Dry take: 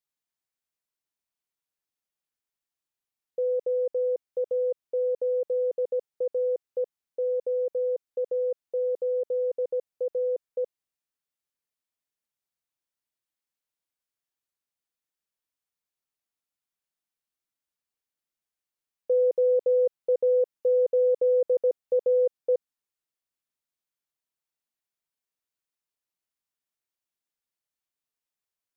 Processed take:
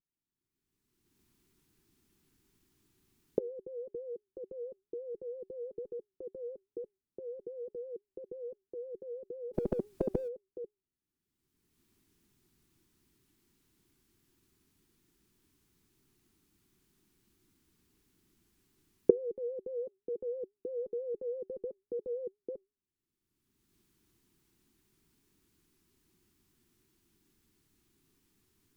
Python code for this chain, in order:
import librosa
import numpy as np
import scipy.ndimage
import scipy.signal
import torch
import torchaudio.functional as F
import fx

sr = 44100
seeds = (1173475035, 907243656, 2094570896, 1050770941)

y = fx.recorder_agc(x, sr, target_db=-23.0, rise_db_per_s=25.0, max_gain_db=30)
y = fx.comb_fb(y, sr, f0_hz=400.0, decay_s=0.31, harmonics='all', damping=0.0, mix_pct=30)
y = fx.vibrato(y, sr, rate_hz=6.0, depth_cents=96.0)
y = fx.curve_eq(y, sr, hz=(370.0, 560.0, 940.0), db=(0, -26, -18))
y = fx.spectral_comp(y, sr, ratio=4.0, at=(9.53, 10.27), fade=0.02)
y = F.gain(torch.from_numpy(y), 5.5).numpy()